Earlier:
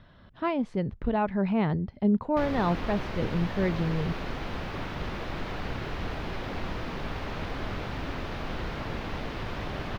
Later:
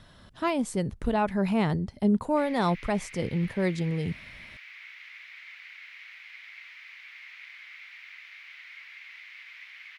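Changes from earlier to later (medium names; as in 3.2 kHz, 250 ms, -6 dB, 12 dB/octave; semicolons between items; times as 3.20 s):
speech: remove distance through air 290 m; background: add ladder high-pass 2 kHz, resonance 75%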